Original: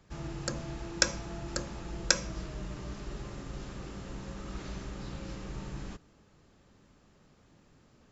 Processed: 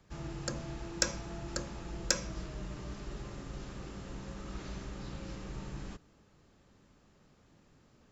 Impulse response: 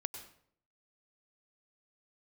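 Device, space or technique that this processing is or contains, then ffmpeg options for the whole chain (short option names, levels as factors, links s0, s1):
one-band saturation: -filter_complex "[0:a]acrossover=split=550|4800[s0][s1][s2];[s1]asoftclip=type=tanh:threshold=0.0668[s3];[s0][s3][s2]amix=inputs=3:normalize=0,volume=0.794"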